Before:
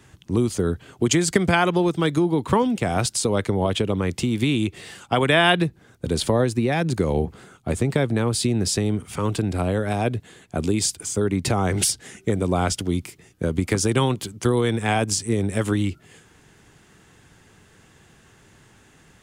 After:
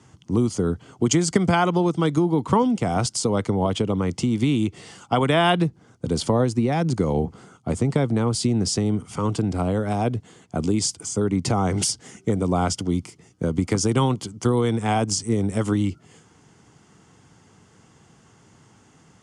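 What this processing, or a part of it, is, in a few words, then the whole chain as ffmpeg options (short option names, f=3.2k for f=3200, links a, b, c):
car door speaker: -af "highpass=96,equalizer=f=380:t=q:w=4:g=-4,equalizer=f=580:t=q:w=4:g=-4,equalizer=f=1.7k:t=q:w=4:g=-10,equalizer=f=2.5k:t=q:w=4:g=-8,equalizer=f=3.8k:t=q:w=4:g=-9,equalizer=f=7.7k:t=q:w=4:g=-3,lowpass=f=8.5k:w=0.5412,lowpass=f=8.5k:w=1.3066,volume=2dB"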